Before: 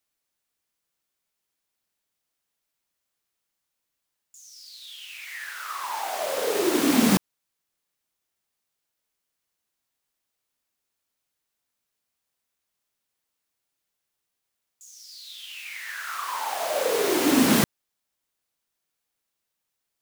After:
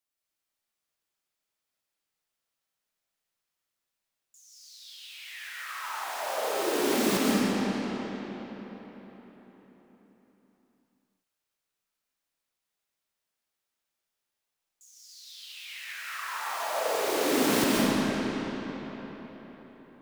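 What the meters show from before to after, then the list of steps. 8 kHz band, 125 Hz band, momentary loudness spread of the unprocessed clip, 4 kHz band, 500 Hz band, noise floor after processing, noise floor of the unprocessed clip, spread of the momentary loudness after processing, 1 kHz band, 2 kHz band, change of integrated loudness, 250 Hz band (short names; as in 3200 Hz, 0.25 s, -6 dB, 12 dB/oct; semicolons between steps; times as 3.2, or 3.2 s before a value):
-4.0 dB, -3.5 dB, 20 LU, -2.5 dB, -2.0 dB, under -85 dBFS, -82 dBFS, 21 LU, -2.0 dB, -1.5 dB, -5.0 dB, -3.5 dB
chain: low shelf 420 Hz -3 dB; digital reverb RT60 4.5 s, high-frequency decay 0.7×, pre-delay 0.105 s, DRR -5.5 dB; gain -8 dB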